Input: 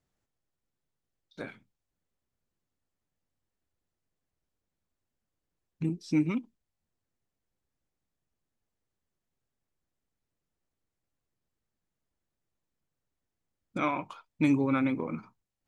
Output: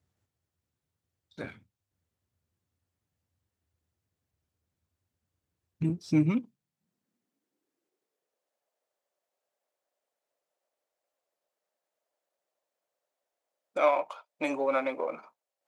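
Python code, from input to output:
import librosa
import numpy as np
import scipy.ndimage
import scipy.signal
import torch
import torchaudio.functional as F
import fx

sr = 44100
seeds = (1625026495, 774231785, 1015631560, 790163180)

y = np.where(x < 0.0, 10.0 ** (-3.0 / 20.0) * x, x)
y = fx.filter_sweep_highpass(y, sr, from_hz=84.0, to_hz=590.0, start_s=5.79, end_s=8.54, q=4.2)
y = F.gain(torch.from_numpy(y), 1.5).numpy()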